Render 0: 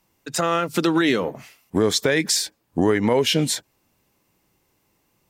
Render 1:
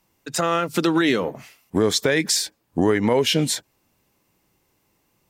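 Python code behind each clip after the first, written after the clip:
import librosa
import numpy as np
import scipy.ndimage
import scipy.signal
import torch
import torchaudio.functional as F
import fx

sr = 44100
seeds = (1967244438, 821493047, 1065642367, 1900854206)

y = x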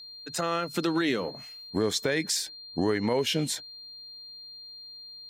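y = x + 10.0 ** (-35.0 / 20.0) * np.sin(2.0 * np.pi * 4200.0 * np.arange(len(x)) / sr)
y = F.gain(torch.from_numpy(y), -7.5).numpy()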